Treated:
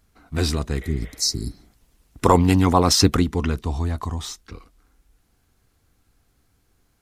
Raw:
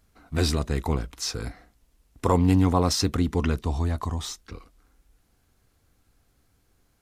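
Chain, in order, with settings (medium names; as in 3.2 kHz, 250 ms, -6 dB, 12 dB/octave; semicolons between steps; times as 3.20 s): 0.84–1.68 s: spectral replace 420–3800 Hz both; peaking EQ 570 Hz -3 dB 0.33 oct; 1.02–3.24 s: harmonic-percussive split percussive +8 dB; trim +1.5 dB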